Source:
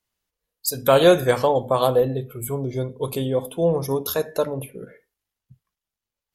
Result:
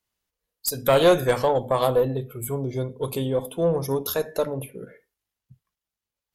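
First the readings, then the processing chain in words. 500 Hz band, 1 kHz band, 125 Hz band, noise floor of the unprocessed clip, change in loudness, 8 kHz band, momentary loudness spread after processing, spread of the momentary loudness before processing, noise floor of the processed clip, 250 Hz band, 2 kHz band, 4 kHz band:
−2.5 dB, −2.0 dB, −1.5 dB, below −85 dBFS, −2.5 dB, −1.5 dB, 12 LU, 13 LU, below −85 dBFS, −2.5 dB, −2.0 dB, −2.5 dB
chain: one-sided soft clipper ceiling −8 dBFS
level −1 dB

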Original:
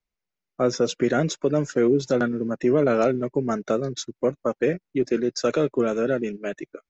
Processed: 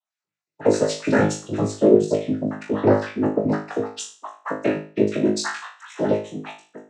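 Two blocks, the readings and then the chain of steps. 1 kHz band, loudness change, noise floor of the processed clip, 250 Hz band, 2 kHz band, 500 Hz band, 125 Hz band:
+2.0 dB, +2.0 dB, below −85 dBFS, +2.0 dB, +2.0 dB, +1.0 dB, +2.0 dB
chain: time-frequency cells dropped at random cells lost 59%
cochlear-implant simulation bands 12
flutter between parallel walls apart 3.3 metres, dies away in 0.38 s
level +3 dB

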